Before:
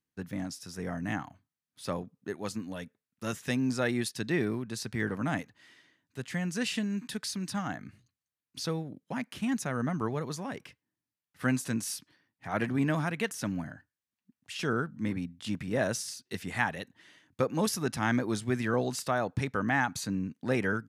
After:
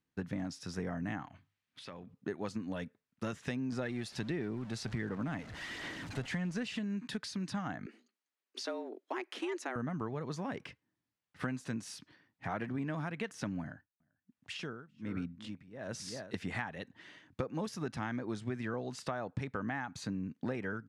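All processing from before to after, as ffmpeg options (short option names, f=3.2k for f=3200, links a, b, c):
-filter_complex "[0:a]asettb=1/sr,asplit=3[a][b][c];[a]atrim=end=1.254[d];[b]atrim=start=1.25:end=2.14,asetpts=PTS-STARTPTS,afade=t=in:d=0.004:c=qsin,afade=t=out:st=0.886:d=0.004:c=qsin,equalizer=f=2.6k:t=o:w=1.6:g=9.5,bandreject=f=50:t=h:w=6,bandreject=f=100:t=h:w=6,bandreject=f=150:t=h:w=6,acompressor=threshold=-48dB:ratio=6:attack=3.2:release=140:knee=1:detection=peak[e];[c]atrim=start=2.136[f];[d][e]acrossfade=d=0.004:c1=hsin:c2=qsin[g];[g][f]acrossfade=d=0.004:c1=qsin:c2=hsin,asettb=1/sr,asplit=3[h][i][j];[h]atrim=end=3.724[k];[i]atrim=start=3.72:end=6.79,asetpts=PTS-STARTPTS,afade=t=in:d=0.004:c=qsin,afade=t=out:st=3.066:d=0.004:c=qsin,aeval=exprs='val(0)+0.5*0.00841*sgn(val(0))':c=same,aphaser=in_gain=1:out_gain=1:delay=1.5:decay=0.3:speed=1.4:type=sinusoidal[l];[j]atrim=start=6.786[m];[k][l]acrossfade=d=0.004:c1=hsin:c2=qsin[n];[n][m]acrossfade=d=0.004:c1=qsin:c2=hsin,asettb=1/sr,asplit=3[o][p][q];[o]atrim=end=7.864[r];[p]atrim=start=7.86:end=9.76,asetpts=PTS-STARTPTS,afade=t=in:d=0.004:c=qsin,afade=t=out:st=1.896:d=0.004:c=qsin,highpass=f=380:p=1,afreqshift=120[s];[q]atrim=start=9.756[t];[r][s]acrossfade=d=0.004:c1=hsin:c2=qsin[u];[u][t]acrossfade=d=0.004:c1=qsin:c2=hsin,asettb=1/sr,asplit=3[v][w][x];[v]atrim=end=13.614[y];[w]atrim=start=13.61:end=16.34,asetpts=PTS-STARTPTS,afade=t=in:d=0.004:c=qsin,afade=t=out:st=2.726:d=0.004:c=qsin,aecho=1:1:390:0.15,atrim=end_sample=120393,aeval=exprs='val(0)*pow(10,-25*(0.5-0.5*cos(2*PI*1.2*n/s))/20)':c=same[z];[x]atrim=start=16.336[aa];[y][z]acrossfade=d=0.004:c1=hsin:c2=qsin[ab];[ab][aa]acrossfade=d=0.004:c1=qsin:c2=hsin,acompressor=threshold=-38dB:ratio=10,lowpass=11k,aemphasis=mode=reproduction:type=50fm,volume=4dB"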